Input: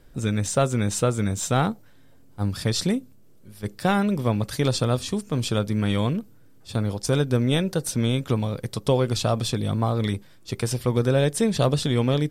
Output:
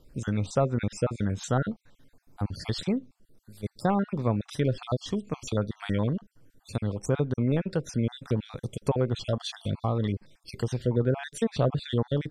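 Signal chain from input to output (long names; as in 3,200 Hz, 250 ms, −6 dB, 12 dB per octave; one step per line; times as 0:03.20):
time-frequency cells dropped at random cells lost 42%
treble cut that deepens with the level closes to 1,500 Hz, closed at −17.5 dBFS
level −3 dB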